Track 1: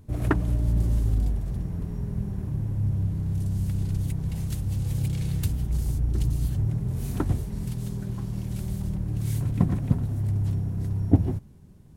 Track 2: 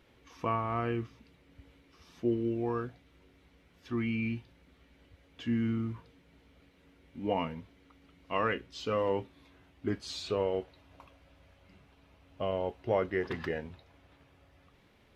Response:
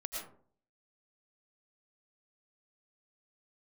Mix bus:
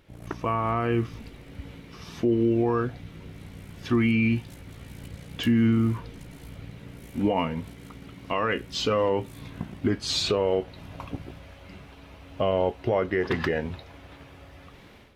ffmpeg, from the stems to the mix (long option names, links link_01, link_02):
-filter_complex "[0:a]highpass=frequency=210:poles=1,tremolo=f=58:d=0.919,volume=-7dB[link_01];[1:a]dynaudnorm=framelen=440:gausssize=3:maxgain=12dB,volume=2.5dB[link_02];[link_01][link_02]amix=inputs=2:normalize=0,alimiter=limit=-14dB:level=0:latency=1:release=246"